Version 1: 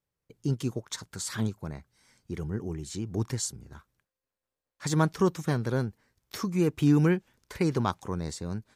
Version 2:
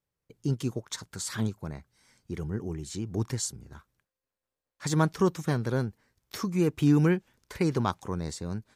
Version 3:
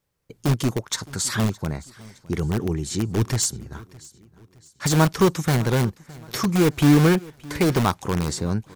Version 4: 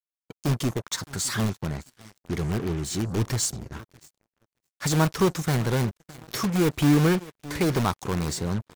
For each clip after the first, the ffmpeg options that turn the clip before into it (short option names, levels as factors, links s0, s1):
-af anull
-filter_complex "[0:a]asplit=2[s0][s1];[s1]aeval=exprs='(mod(15*val(0)+1,2)-1)/15':c=same,volume=0.501[s2];[s0][s2]amix=inputs=2:normalize=0,aecho=1:1:614|1228|1842:0.0794|0.0342|0.0147,volume=2.11"
-af "aeval=exprs='val(0)+0.5*0.0251*sgn(val(0))':c=same,acrusher=bits=4:mix=0:aa=0.5,volume=0.596"